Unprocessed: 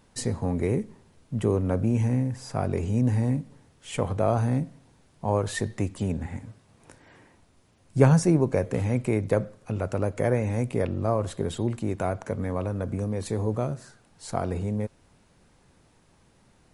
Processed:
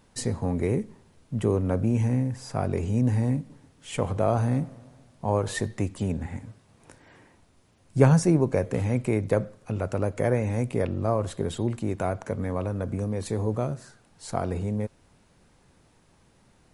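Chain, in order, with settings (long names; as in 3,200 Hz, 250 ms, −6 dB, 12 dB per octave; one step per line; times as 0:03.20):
0:03.35–0:05.66: feedback echo with a swinging delay time 143 ms, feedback 56%, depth 119 cents, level −22 dB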